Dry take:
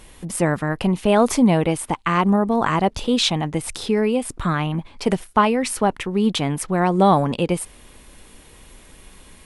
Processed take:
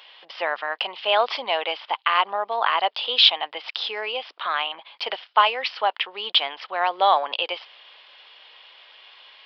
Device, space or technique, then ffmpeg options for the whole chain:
musical greeting card: -af "aresample=11025,aresample=44100,highpass=frequency=640:width=0.5412,highpass=frequency=640:width=1.3066,equalizer=frequency=3100:width_type=o:width=0.46:gain=10.5"

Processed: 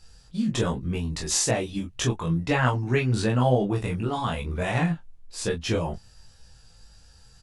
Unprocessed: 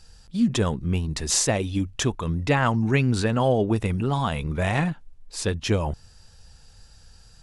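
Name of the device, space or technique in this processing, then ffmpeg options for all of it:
double-tracked vocal: -filter_complex "[0:a]asplit=2[link_01][link_02];[link_02]adelay=24,volume=-4dB[link_03];[link_01][link_03]amix=inputs=2:normalize=0,flanger=delay=15.5:depth=2.9:speed=1.1"

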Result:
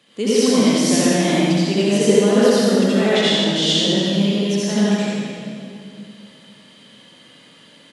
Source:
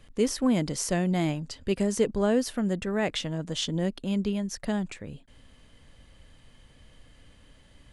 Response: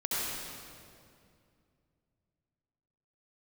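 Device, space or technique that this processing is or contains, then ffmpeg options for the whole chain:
PA in a hall: -filter_complex "[0:a]highpass=frequency=170:width=0.5412,highpass=frequency=170:width=1.3066,equalizer=frequency=3700:width_type=o:width=0.96:gain=7.5,aecho=1:1:84:0.531[link_01];[1:a]atrim=start_sample=2205[link_02];[link_01][link_02]afir=irnorm=-1:irlink=0,volume=2dB"

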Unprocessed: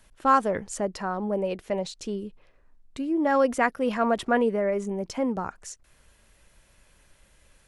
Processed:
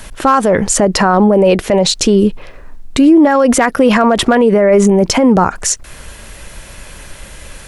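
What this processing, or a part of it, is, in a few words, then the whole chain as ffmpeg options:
loud club master: -af "acompressor=threshold=-25dB:ratio=2.5,asoftclip=type=hard:threshold=-17.5dB,alimiter=level_in=27.5dB:limit=-1dB:release=50:level=0:latency=1,volume=-1dB"

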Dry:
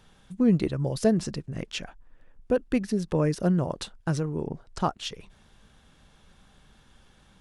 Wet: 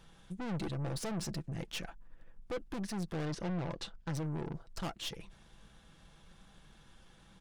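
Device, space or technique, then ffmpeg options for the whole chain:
valve amplifier with mains hum: -filter_complex "[0:a]aeval=exprs='(tanh(56.2*val(0)+0.45)-tanh(0.45))/56.2':channel_layout=same,aeval=exprs='val(0)+0.000316*(sin(2*PI*50*n/s)+sin(2*PI*2*50*n/s)/2+sin(2*PI*3*50*n/s)/3+sin(2*PI*4*50*n/s)/4+sin(2*PI*5*50*n/s)/5)':channel_layout=same,asettb=1/sr,asplit=3[link_01][link_02][link_03];[link_01]atrim=end=3.254[link_04];[link_02]atrim=start=3.25:end=4.15,asetpts=PTS-STARTPTS,afade=type=in:duration=0.004:curve=qsin,afade=type=out:start_time=0.896:duration=0.004:curve=qsin,lowpass=5900[link_05];[link_03]atrim=start=4.146[link_06];[link_04][link_05]acrossfade=duration=0.004:curve1=hsin:curve2=qsin[link_07];[link_07][link_06]acrossfade=duration=0.004:curve1=qsin:curve2=hsin,aecho=1:1:6:0.34,volume=-1dB"

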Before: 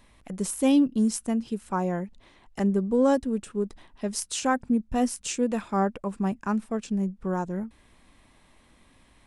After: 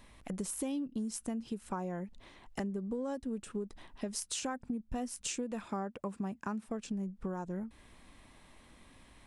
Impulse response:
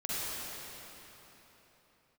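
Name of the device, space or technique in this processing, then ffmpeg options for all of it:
serial compression, leveller first: -filter_complex "[0:a]acompressor=threshold=-25dB:ratio=2,acompressor=threshold=-35dB:ratio=5,asettb=1/sr,asplit=3[link_01][link_02][link_03];[link_01]atrim=end=5.664[link_04];[link_02]atrim=start=5.66:end=6.66,asetpts=PTS-STARTPTS,afade=type=in:duration=0.004:curve=qsin,afade=type=out:start_time=0.996:duration=0.004:curve=qsin,highpass=77[link_05];[link_03]atrim=start=6.656[link_06];[link_04][link_05]acrossfade=duration=0.004:curve1=hsin:curve2=qsin[link_07];[link_07][link_06]acrossfade=duration=0.004:curve1=qsin:curve2=hsin"

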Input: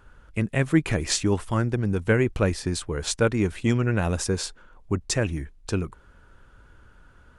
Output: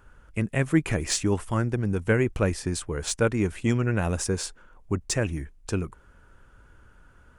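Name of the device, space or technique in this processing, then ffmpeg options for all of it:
exciter from parts: -filter_complex "[0:a]asplit=2[link_01][link_02];[link_02]highpass=frequency=3700:width=0.5412,highpass=frequency=3700:width=1.3066,asoftclip=type=tanh:threshold=-24dB,volume=-6dB[link_03];[link_01][link_03]amix=inputs=2:normalize=0,volume=-1.5dB"

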